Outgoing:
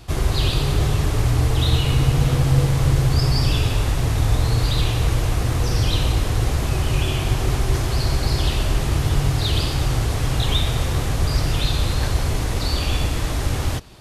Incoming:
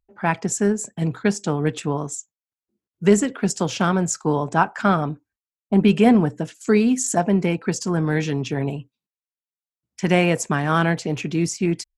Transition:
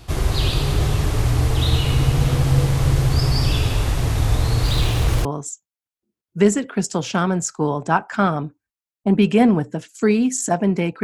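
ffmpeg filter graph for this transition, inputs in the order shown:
ffmpeg -i cue0.wav -i cue1.wav -filter_complex "[0:a]asettb=1/sr,asplit=3[link_01][link_02][link_03];[link_01]atrim=end=4.644[link_04];[link_02]atrim=start=4.64:end=5.25,asetpts=PTS-STARTPTS,afade=type=in:duration=0.004:curve=qsin,afade=type=out:start_time=0.606:duration=0.004:curve=qsin,aeval=exprs='val(0)+0.5*0.0316*sgn(val(0))':channel_layout=same[link_05];[link_03]atrim=start=5.246[link_06];[link_04][link_05]acrossfade=duration=0.004:curve1=hsin:curve2=qsin[link_07];[link_07][link_06]acrossfade=duration=0.004:curve1=qsin:curve2=hsin,apad=whole_dur=11.03,atrim=end=11.03,atrim=end=5.252[link_08];[1:a]atrim=start=1.908:end=7.69[link_09];[link_08][link_09]acrossfade=duration=0.004:curve1=hsin:curve2=hsin" out.wav

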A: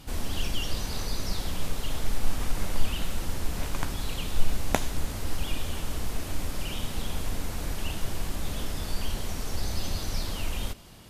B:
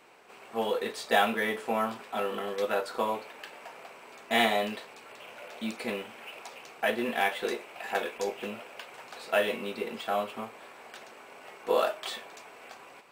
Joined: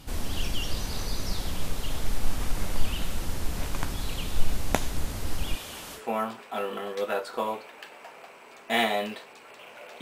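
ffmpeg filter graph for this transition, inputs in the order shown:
ffmpeg -i cue0.wav -i cue1.wav -filter_complex "[0:a]asettb=1/sr,asplit=3[link_01][link_02][link_03];[link_01]atrim=end=5.554[link_04];[link_02]atrim=start=5.55:end=6.02,asetpts=PTS-STARTPTS,afade=type=in:duration=0.004:curve=qsin,afade=type=out:start_time=0.466:duration=0.004:curve=qsin,highpass=frequency=540:poles=1[link_05];[link_03]atrim=start=6.016[link_06];[link_04][link_05]acrossfade=duration=0.004:curve1=hsin:curve2=qsin[link_07];[link_07][link_06]acrossfade=duration=0.004:curve1=qsin:curve2=hsin,apad=whole_dur=10.01,atrim=end=10.01,atrim=end=6.02,asetpts=PTS-STARTPTS[link_08];[1:a]atrim=start=1.55:end=5.62,asetpts=PTS-STARTPTS[link_09];[link_08][link_09]acrossfade=duration=0.08:curve1=tri:curve2=tri" out.wav

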